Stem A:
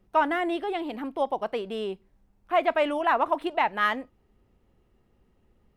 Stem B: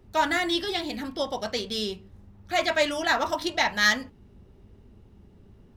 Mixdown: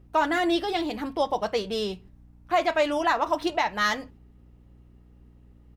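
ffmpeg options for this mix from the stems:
-filter_complex "[0:a]aeval=exprs='val(0)+0.002*(sin(2*PI*60*n/s)+sin(2*PI*2*60*n/s)/2+sin(2*PI*3*60*n/s)/3+sin(2*PI*4*60*n/s)/4+sin(2*PI*5*60*n/s)/5)':c=same,volume=1.26,asplit=2[s0][s1];[1:a]adelay=7.1,volume=0.562[s2];[s1]apad=whole_len=254648[s3];[s2][s3]sidechaingate=range=0.355:threshold=0.00398:ratio=16:detection=peak[s4];[s0][s4]amix=inputs=2:normalize=0,alimiter=limit=0.224:level=0:latency=1:release=270"

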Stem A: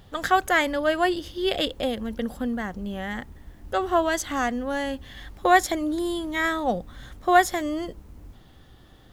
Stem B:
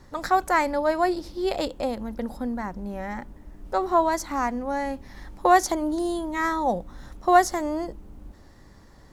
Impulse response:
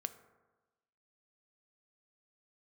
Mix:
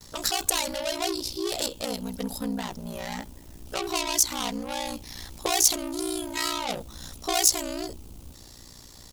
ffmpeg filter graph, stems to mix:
-filter_complex "[0:a]agate=range=0.0224:threshold=0.01:ratio=3:detection=peak,volume=0.794[s0];[1:a]asoftclip=type=tanh:threshold=0.0355,aexciter=amount=5.9:drive=4.3:freq=2600,adelay=8.6,volume=1.33,asplit=2[s1][s2];[s2]apad=whole_len=402467[s3];[s0][s3]sidechaincompress=threshold=0.02:ratio=8:attack=16:release=696[s4];[s4][s1]amix=inputs=2:normalize=0,aeval=exprs='val(0)*sin(2*PI*30*n/s)':c=same"

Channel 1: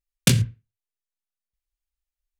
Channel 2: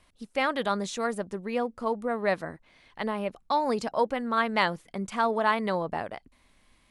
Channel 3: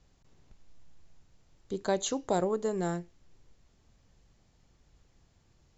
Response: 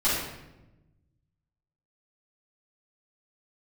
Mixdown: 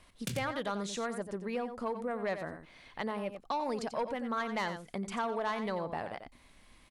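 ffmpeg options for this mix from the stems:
-filter_complex "[0:a]volume=0.2,asplit=2[s0][s1];[s1]volume=0.447[s2];[1:a]asoftclip=type=tanh:threshold=0.126,volume=1.33,asplit=2[s3][s4];[s4]volume=0.299[s5];[s2][s5]amix=inputs=2:normalize=0,aecho=0:1:90:1[s6];[s0][s3][s6]amix=inputs=3:normalize=0,acompressor=threshold=0.0112:ratio=2"

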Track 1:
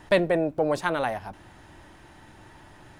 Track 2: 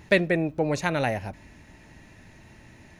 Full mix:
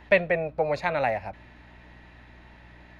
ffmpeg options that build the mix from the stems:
-filter_complex "[0:a]highshelf=f=5600:t=q:w=3:g=-11.5,volume=0.355[s0];[1:a]acrossover=split=470 3000:gain=0.224 1 0.1[s1][s2][s3];[s1][s2][s3]amix=inputs=3:normalize=0,aeval=exprs='val(0)+0.00224*(sin(2*PI*60*n/s)+sin(2*PI*2*60*n/s)/2+sin(2*PI*3*60*n/s)/3+sin(2*PI*4*60*n/s)/4+sin(2*PI*5*60*n/s)/5)':c=same,volume=1.26[s4];[s0][s4]amix=inputs=2:normalize=0"

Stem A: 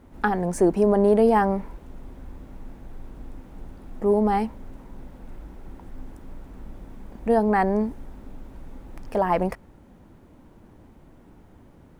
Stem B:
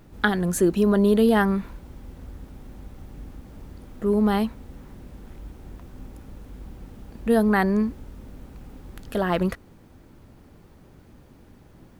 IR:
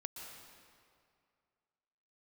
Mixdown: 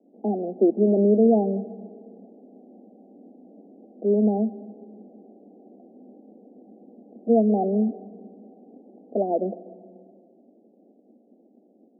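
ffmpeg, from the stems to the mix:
-filter_complex "[0:a]volume=0.355,asplit=2[s0][s1];[1:a]volume=-1,volume=1.06,asplit=2[s2][s3];[s3]volume=0.376[s4];[s1]apad=whole_len=528862[s5];[s2][s5]sidechaingate=range=0.224:threshold=0.00141:ratio=16:detection=peak[s6];[2:a]atrim=start_sample=2205[s7];[s4][s7]afir=irnorm=-1:irlink=0[s8];[s0][s6][s8]amix=inputs=3:normalize=0,asuperpass=centerf=390:order=20:qfactor=0.7"

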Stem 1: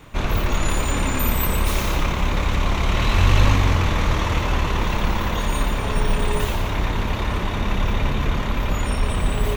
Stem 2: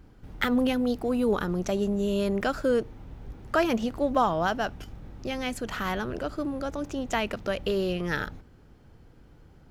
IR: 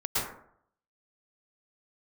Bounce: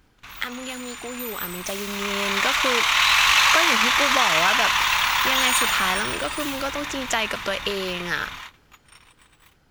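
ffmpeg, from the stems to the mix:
-filter_complex "[0:a]highpass=f=880:w=0.5412,highpass=f=880:w=1.3066,volume=0.668,afade=t=in:st=1.87:d=0.56:silence=0.266073,afade=t=out:st=5.63:d=0.61:silence=0.316228[s0];[1:a]acompressor=threshold=0.0501:ratio=6,volume=0.794,asplit=2[s1][s2];[s2]apad=whole_len=421856[s3];[s0][s3]sidechaingate=range=0.0224:threshold=0.00282:ratio=16:detection=peak[s4];[s4][s1]amix=inputs=2:normalize=0,tiltshelf=f=830:g=-7,dynaudnorm=f=220:g=17:m=2.66"

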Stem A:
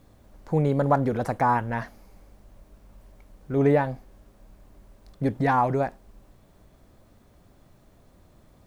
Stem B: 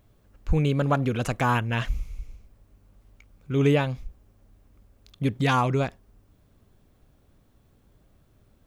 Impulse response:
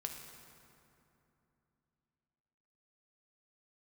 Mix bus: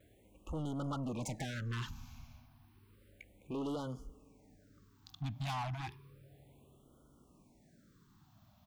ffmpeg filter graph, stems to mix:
-filter_complex "[0:a]lowpass=3900,acompressor=threshold=0.0562:ratio=6,volume=0.251[s0];[1:a]acompressor=threshold=0.0501:ratio=6,asplit=2[s1][s2];[s2]afreqshift=-0.31[s3];[s1][s3]amix=inputs=2:normalize=1,volume=-1,adelay=4.4,volume=1.19,asplit=2[s4][s5];[s5]volume=0.0944[s6];[2:a]atrim=start_sample=2205[s7];[s6][s7]afir=irnorm=-1:irlink=0[s8];[s0][s4][s8]amix=inputs=3:normalize=0,highpass=f=140:p=1,asoftclip=type=tanh:threshold=0.0178,afftfilt=real='re*(1-between(b*sr/1024,420*pow(2100/420,0.5+0.5*sin(2*PI*0.32*pts/sr))/1.41,420*pow(2100/420,0.5+0.5*sin(2*PI*0.32*pts/sr))*1.41))':imag='im*(1-between(b*sr/1024,420*pow(2100/420,0.5+0.5*sin(2*PI*0.32*pts/sr))/1.41,420*pow(2100/420,0.5+0.5*sin(2*PI*0.32*pts/sr))*1.41))':win_size=1024:overlap=0.75"

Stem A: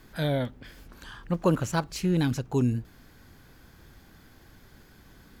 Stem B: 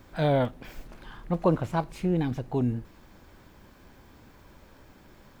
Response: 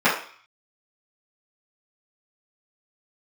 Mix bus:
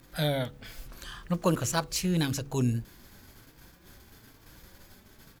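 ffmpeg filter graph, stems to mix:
-filter_complex "[0:a]highshelf=f=3100:g=11,bandreject=f=70.33:t=h:w=4,bandreject=f=140.66:t=h:w=4,bandreject=f=210.99:t=h:w=4,bandreject=f=281.32:t=h:w=4,bandreject=f=351.65:t=h:w=4,bandreject=f=421.98:t=h:w=4,bandreject=f=492.31:t=h:w=4,volume=0.75[s0];[1:a]equalizer=f=770:w=1:g=-3.5,acompressor=threshold=0.0251:ratio=6,asplit=2[s1][s2];[s2]adelay=3.8,afreqshift=1.1[s3];[s1][s3]amix=inputs=2:normalize=1,adelay=1.8,volume=0.944,asplit=2[s4][s5];[s5]apad=whole_len=238144[s6];[s0][s6]sidechaingate=range=0.0224:threshold=0.00158:ratio=16:detection=peak[s7];[s7][s4]amix=inputs=2:normalize=0"

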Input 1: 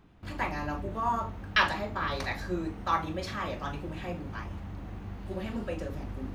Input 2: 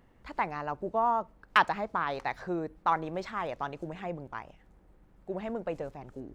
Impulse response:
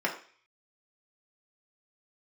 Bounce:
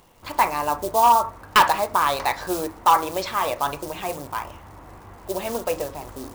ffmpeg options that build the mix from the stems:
-filter_complex "[0:a]volume=0.501,asplit=2[s0][s1];[s1]volume=0.126[s2];[1:a]highshelf=f=2700:g=-11,acrusher=bits=7:mode=log:mix=0:aa=0.000001,aexciter=amount=13.8:drive=4.6:freq=2700,volume=1.06[s3];[2:a]atrim=start_sample=2205[s4];[s2][s4]afir=irnorm=-1:irlink=0[s5];[s0][s3][s5]amix=inputs=3:normalize=0,equalizer=f=500:t=o:w=1:g=6,equalizer=f=1000:t=o:w=1:g=11,equalizer=f=2000:t=o:w=1:g=4,asoftclip=type=hard:threshold=0.376"

